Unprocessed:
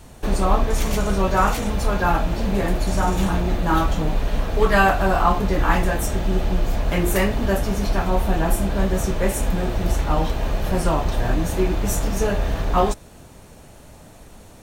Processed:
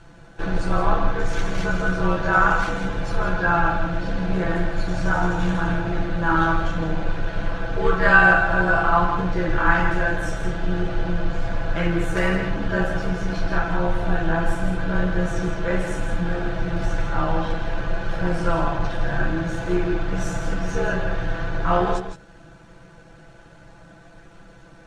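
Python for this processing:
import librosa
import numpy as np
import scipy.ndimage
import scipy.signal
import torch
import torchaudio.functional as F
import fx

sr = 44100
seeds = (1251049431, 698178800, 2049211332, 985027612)

p1 = fx.peak_eq(x, sr, hz=1500.0, db=12.5, octaves=0.27)
p2 = fx.stretch_grains(p1, sr, factor=1.7, grain_ms=29.0)
p3 = fx.air_absorb(p2, sr, metres=110.0)
p4 = p3 + fx.echo_single(p3, sr, ms=164, db=-8.0, dry=0)
y = F.gain(torch.from_numpy(p4), -1.5).numpy()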